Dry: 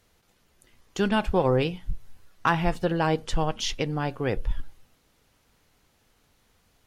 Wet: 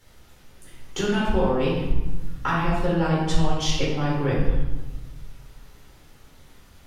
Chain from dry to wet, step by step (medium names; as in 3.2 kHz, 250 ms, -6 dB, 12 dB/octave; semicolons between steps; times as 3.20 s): compression 2.5:1, threshold -36 dBFS, peak gain reduction 13 dB; reverberation RT60 1.2 s, pre-delay 7 ms, DRR -7 dB; trim +2 dB